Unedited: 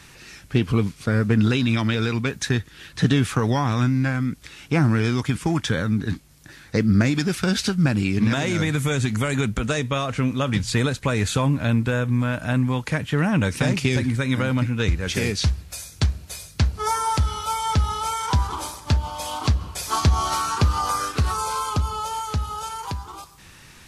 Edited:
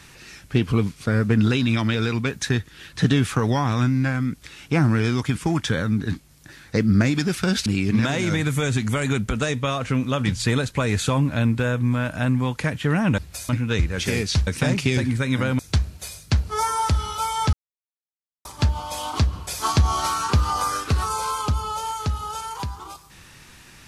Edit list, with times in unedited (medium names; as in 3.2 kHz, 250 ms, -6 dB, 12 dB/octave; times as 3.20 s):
7.66–7.94 s: delete
13.46–14.58 s: swap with 15.56–15.87 s
17.81–18.73 s: mute